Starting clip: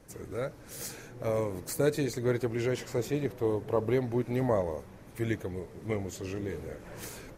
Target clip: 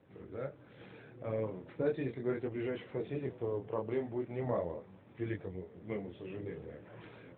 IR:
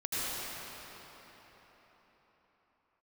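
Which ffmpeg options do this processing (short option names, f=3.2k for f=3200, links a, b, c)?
-filter_complex "[0:a]asettb=1/sr,asplit=3[a][b][c];[a]atrim=end=3.674[d];[b]atrim=start=3.67:end=4.39,asetpts=PTS-STARTPTS,afade=t=in:d=0.004:c=qsin,afade=t=out:st=0.716:d=0.004:c=qsin,lowshelf=f=190:g=-6.5[e];[c]atrim=start=4.386[f];[d][e]acrossfade=d=0.004:c1=hsin:c2=qsin[g];[g][f]acrossfade=d=0.004:c1=qsin:c2=hsin,flanger=delay=20:depth=7.7:speed=0.38,volume=-3dB" -ar 8000 -c:a libopencore_amrnb -b:a 12200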